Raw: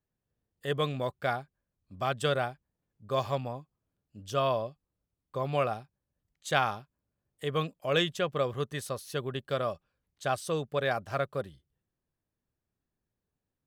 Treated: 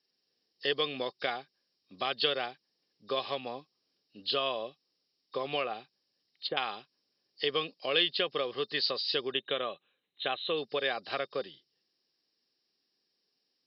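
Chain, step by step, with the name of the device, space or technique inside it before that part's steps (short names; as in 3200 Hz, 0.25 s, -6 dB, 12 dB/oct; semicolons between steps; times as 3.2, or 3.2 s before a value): 9.3–10.58 elliptic low-pass 5800 Hz, stop band 40 dB; hearing aid with frequency lowering (nonlinear frequency compression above 3600 Hz 4:1; compressor 3:1, threshold -34 dBFS, peak gain reduction 10 dB; speaker cabinet 330–5600 Hz, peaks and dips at 620 Hz -9 dB, 940 Hz -8 dB, 1400 Hz -8 dB, 3000 Hz +7 dB, 5000 Hz +4 dB); 5.6–6.57 treble ducked by the level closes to 710 Hz, closed at -33.5 dBFS; HPF 240 Hz 6 dB/oct; gain +9 dB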